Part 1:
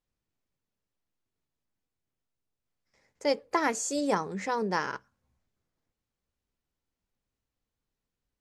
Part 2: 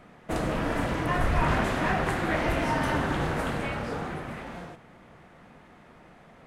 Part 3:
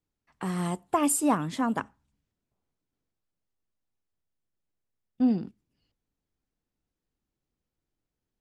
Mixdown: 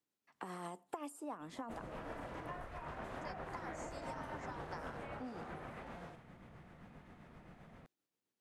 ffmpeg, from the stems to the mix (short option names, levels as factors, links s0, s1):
-filter_complex "[0:a]highpass=1100,acompressor=threshold=0.02:ratio=6,volume=0.531[s0];[1:a]bass=f=250:g=8,treble=f=4000:g=-1,adelay=1400,volume=0.473[s1];[2:a]highpass=210,volume=0.841[s2];[s1][s2]amix=inputs=2:normalize=0,acompressor=threshold=0.0251:ratio=5,volume=1[s3];[s0][s3]amix=inputs=2:normalize=0,acrossover=split=400|1300[s4][s5][s6];[s4]acompressor=threshold=0.00251:ratio=4[s7];[s5]acompressor=threshold=0.00794:ratio=4[s8];[s6]acompressor=threshold=0.00158:ratio=4[s9];[s7][s8][s9]amix=inputs=3:normalize=0,tremolo=f=7.6:d=0.35"